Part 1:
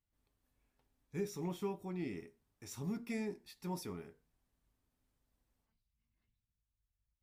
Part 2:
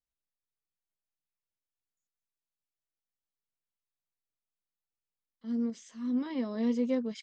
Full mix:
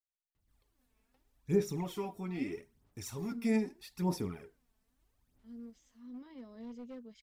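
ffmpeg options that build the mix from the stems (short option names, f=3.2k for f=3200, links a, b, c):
-filter_complex "[0:a]aphaser=in_gain=1:out_gain=1:delay=4.6:decay=0.62:speed=0.79:type=sinusoidal,adelay=350,volume=2.5dB[a];[1:a]asoftclip=type=hard:threshold=-25dB,volume=-16.5dB[b];[a][b]amix=inputs=2:normalize=0"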